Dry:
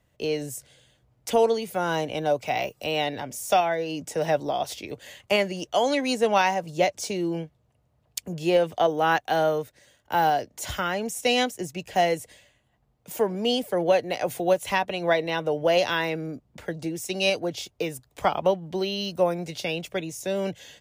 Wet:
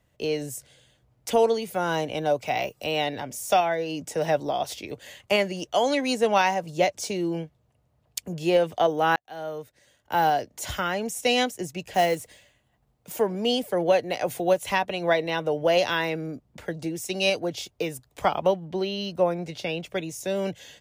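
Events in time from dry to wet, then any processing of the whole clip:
9.16–10.21 fade in
11.94–13.17 block floating point 5-bit
18.65–19.89 high shelf 5500 Hz -10 dB

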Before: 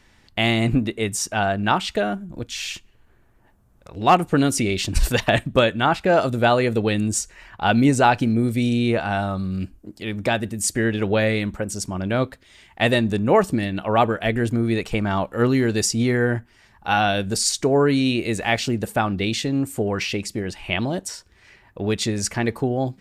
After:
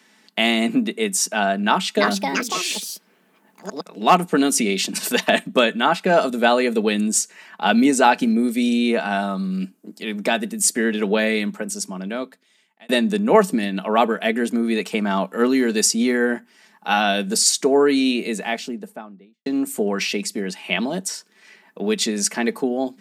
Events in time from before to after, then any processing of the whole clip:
1.62–4.07 echoes that change speed 0.351 s, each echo +5 st, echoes 2
11.4–12.89 fade out
17.91–19.46 studio fade out
whole clip: Chebyshev high-pass 180 Hz, order 5; high shelf 5000 Hz +5 dB; comb 4.6 ms, depth 35%; gain +1 dB

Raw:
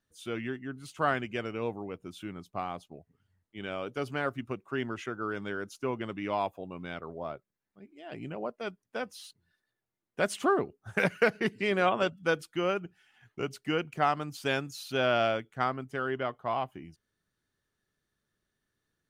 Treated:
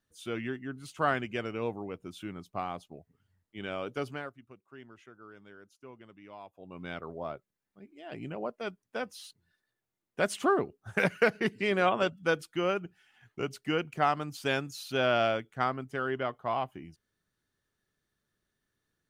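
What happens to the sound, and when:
3.98–6.88 dip -17 dB, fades 0.35 s

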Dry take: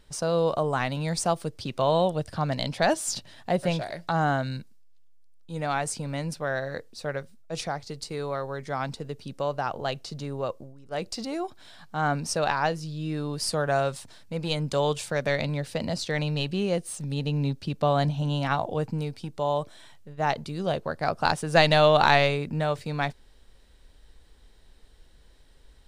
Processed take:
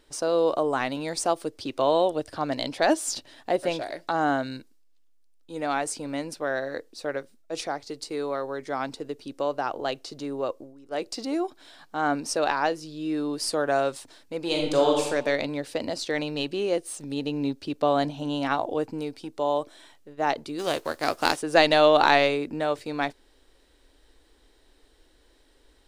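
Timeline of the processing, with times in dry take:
14.44–15.04 reverb throw, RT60 0.96 s, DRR -1 dB
20.58–21.35 spectral whitening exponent 0.6
whole clip: resonant low shelf 230 Hz -7.5 dB, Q 3

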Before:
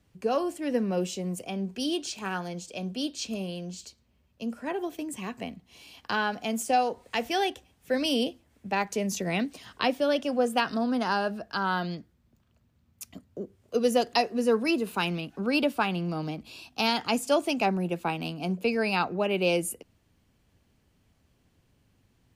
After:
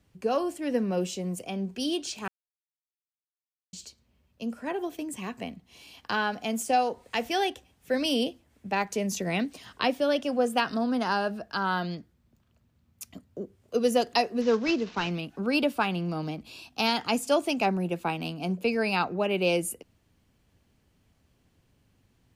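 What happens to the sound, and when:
2.28–3.73 mute
14.41–15.11 CVSD 32 kbps

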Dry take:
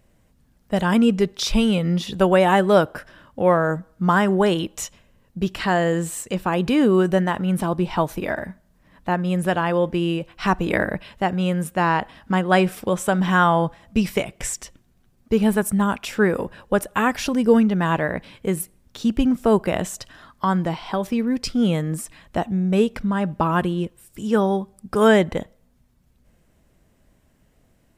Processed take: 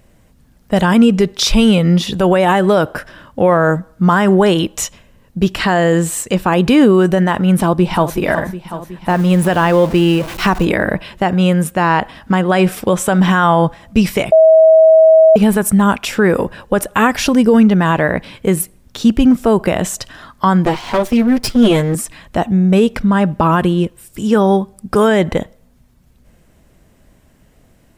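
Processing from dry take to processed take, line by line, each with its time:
7.54–8.17 echo throw 0.37 s, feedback 70%, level -12.5 dB
9.09–10.65 zero-crossing step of -33 dBFS
14.32–15.36 bleep 641 Hz -13 dBFS
20.65–21.95 minimum comb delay 8.4 ms
whole clip: maximiser +10.5 dB; gain -1 dB

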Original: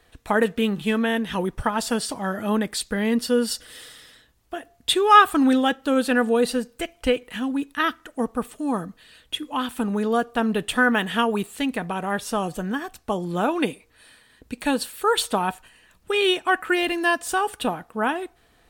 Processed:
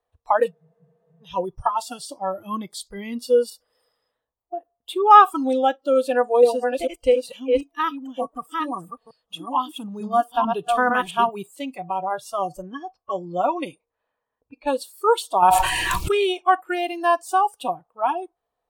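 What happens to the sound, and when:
0.53 spectral freeze 0.69 s
3.5–5.11 bell 6100 Hz -12.5 dB 1.7 oct
5.98–11.29 reverse delay 0.447 s, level -2.5 dB
12.62–14.69 low-pass opened by the level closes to 1700 Hz, open at -19.5 dBFS
15.42–16.32 fast leveller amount 100%
whole clip: spectral noise reduction 22 dB; band shelf 720 Hz +13 dB; gain -6.5 dB

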